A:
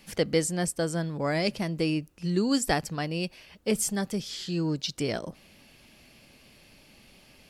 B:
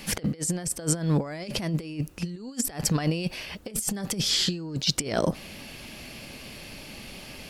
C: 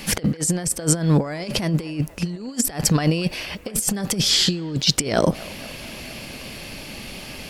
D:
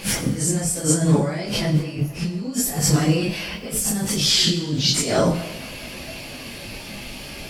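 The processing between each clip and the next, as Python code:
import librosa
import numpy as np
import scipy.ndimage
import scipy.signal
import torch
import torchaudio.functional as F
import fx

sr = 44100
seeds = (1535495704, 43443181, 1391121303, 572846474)

y1 = fx.over_compress(x, sr, threshold_db=-34.0, ratio=-0.5)
y1 = y1 * 10.0 ** (7.0 / 20.0)
y2 = fx.echo_wet_bandpass(y1, sr, ms=234, feedback_pct=72, hz=1000.0, wet_db=-18.5)
y2 = y2 * 10.0 ** (6.5 / 20.0)
y3 = fx.phase_scramble(y2, sr, seeds[0], window_ms=100)
y3 = fx.rev_plate(y3, sr, seeds[1], rt60_s=0.94, hf_ratio=1.0, predelay_ms=0, drr_db=8.0)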